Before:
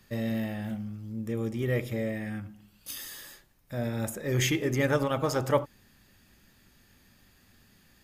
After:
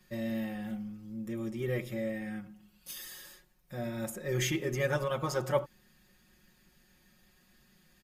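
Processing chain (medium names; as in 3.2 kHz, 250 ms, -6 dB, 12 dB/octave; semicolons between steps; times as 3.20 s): comb 5.5 ms, depth 98%; trim -7 dB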